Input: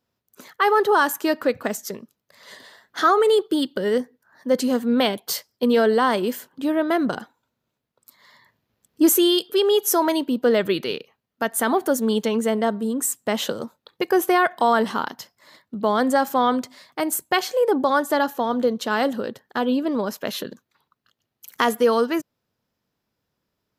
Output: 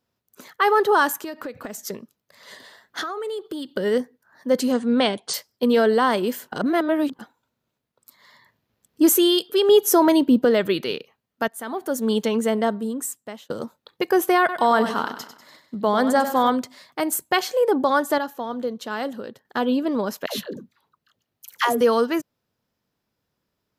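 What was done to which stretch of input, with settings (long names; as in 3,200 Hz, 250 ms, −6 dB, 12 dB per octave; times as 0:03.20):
0:01.21–0:01.81: downward compressor 12 to 1, threshold −28 dBFS
0:03.01–0:03.69: downward compressor 8 to 1, threshold −27 dBFS
0:04.72–0:05.34: linear-phase brick-wall low-pass 10,000 Hz
0:06.52–0:07.19: reverse
0:09.69–0:10.45: low-shelf EQ 430 Hz +9.5 dB
0:11.48–0:12.11: fade in quadratic, from −13 dB
0:12.66–0:13.50: fade out linear
0:14.39–0:16.50: repeating echo 97 ms, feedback 44%, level −10.5 dB
0:18.18–0:19.45: clip gain −6.5 dB
0:20.26–0:21.81: all-pass dispersion lows, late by 112 ms, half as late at 520 Hz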